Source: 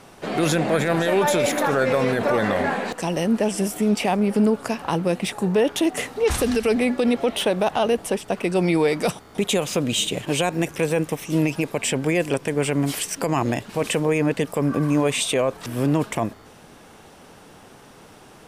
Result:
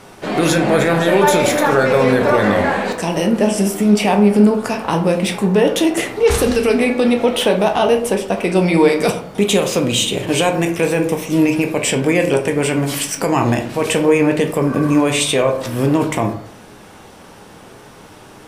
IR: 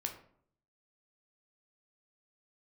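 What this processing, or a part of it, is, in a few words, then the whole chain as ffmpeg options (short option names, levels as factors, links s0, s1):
bathroom: -filter_complex "[1:a]atrim=start_sample=2205[s0];[0:a][s0]afir=irnorm=-1:irlink=0,volume=2.11"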